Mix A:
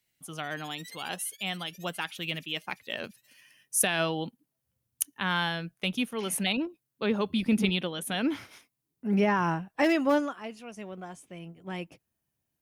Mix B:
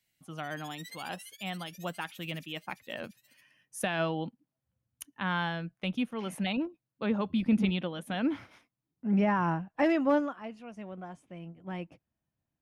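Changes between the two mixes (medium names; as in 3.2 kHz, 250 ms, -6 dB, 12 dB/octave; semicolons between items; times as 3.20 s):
speech: add low-pass 1.4 kHz 6 dB/octave; master: add peaking EQ 410 Hz -7 dB 0.3 oct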